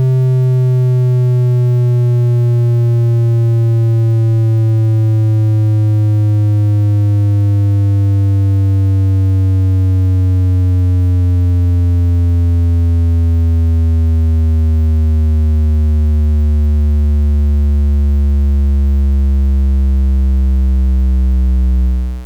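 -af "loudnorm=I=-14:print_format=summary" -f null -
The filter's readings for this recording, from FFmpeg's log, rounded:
Input Integrated:    -12.8 LUFS
Input True Peak:      -9.0 dBTP
Input LRA:             2.0 LU
Input Threshold:     -22.8 LUFS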